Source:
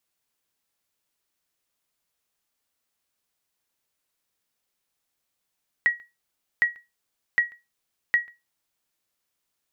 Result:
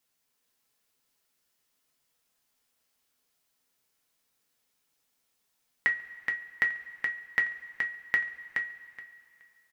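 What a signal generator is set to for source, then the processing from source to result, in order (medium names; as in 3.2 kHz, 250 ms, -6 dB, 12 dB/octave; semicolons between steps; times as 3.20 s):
sonar ping 1.91 kHz, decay 0.22 s, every 0.76 s, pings 4, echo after 0.14 s, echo -26.5 dB -12 dBFS
compression, threshold -24 dBFS; feedback delay 423 ms, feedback 17%, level -4.5 dB; two-slope reverb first 0.21 s, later 2.8 s, from -22 dB, DRR 2.5 dB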